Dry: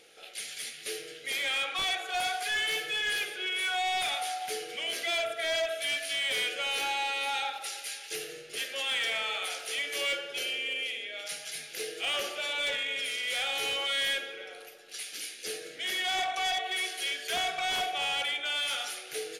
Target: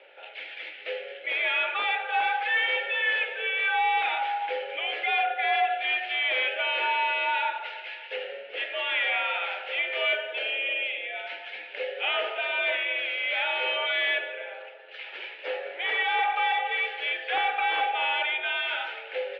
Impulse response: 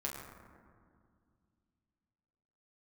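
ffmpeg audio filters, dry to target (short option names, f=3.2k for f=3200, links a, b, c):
-filter_complex "[0:a]highpass=f=260:t=q:w=0.5412,highpass=f=260:t=q:w=1.307,lowpass=f=2.8k:t=q:w=0.5176,lowpass=f=2.8k:t=q:w=0.7071,lowpass=f=2.8k:t=q:w=1.932,afreqshift=75,asettb=1/sr,asplit=3[a][b][c];[a]atrim=end=15.044[d];[b]atrim=start=15.04:end=16.03,asetpts=PTS-STARTPTS,afade=t=in:d=0.004:c=qsin,afade=t=out:st=0.986:d=0.004:c=qsin,equalizer=f=1k:w=1.7:g=10.5[e];[c]atrim=start=16.026[f];[d][e]acrossfade=d=0.004:c1=hsin:c2=qsin[g];[g][f]acrossfade=d=0.004:c1=qsin:c2=hsin,volume=6.5dB"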